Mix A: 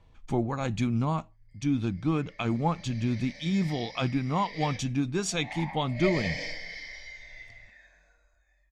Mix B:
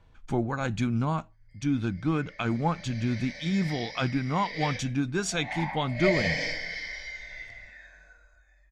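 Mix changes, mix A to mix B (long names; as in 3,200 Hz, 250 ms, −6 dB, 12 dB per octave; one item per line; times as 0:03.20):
background: send +6.5 dB
master: add parametric band 1,500 Hz +10 dB 0.23 octaves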